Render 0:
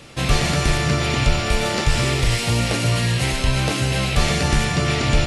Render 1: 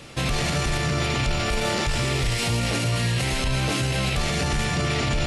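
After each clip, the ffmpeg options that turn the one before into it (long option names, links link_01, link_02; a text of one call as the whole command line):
ffmpeg -i in.wav -af "alimiter=limit=-15.5dB:level=0:latency=1:release=17" out.wav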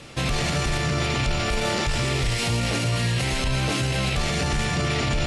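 ffmpeg -i in.wav -af "lowpass=11000" out.wav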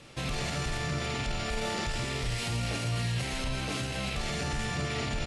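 ffmpeg -i in.wav -filter_complex "[0:a]asplit=2[link_01][link_02];[link_02]adelay=50,volume=-7.5dB[link_03];[link_01][link_03]amix=inputs=2:normalize=0,volume=-9dB" out.wav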